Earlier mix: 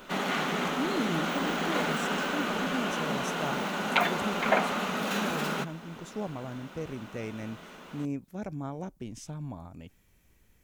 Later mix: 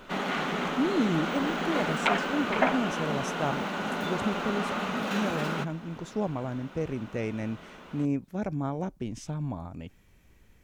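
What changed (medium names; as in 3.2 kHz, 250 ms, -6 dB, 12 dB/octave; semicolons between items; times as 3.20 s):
speech +5.5 dB; second sound: entry -1.90 s; master: add treble shelf 6.7 kHz -10.5 dB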